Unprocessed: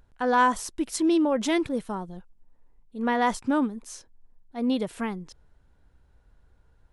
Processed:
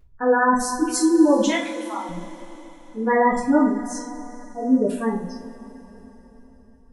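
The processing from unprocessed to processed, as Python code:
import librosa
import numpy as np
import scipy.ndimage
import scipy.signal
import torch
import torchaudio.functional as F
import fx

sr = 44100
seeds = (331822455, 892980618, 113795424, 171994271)

y = fx.cheby1_highpass(x, sr, hz=780.0, order=3, at=(1.49, 2.09))
y = fx.spec_gate(y, sr, threshold_db=-15, keep='strong')
y = fx.rev_double_slope(y, sr, seeds[0], early_s=0.39, late_s=4.2, knee_db=-21, drr_db=-7.5)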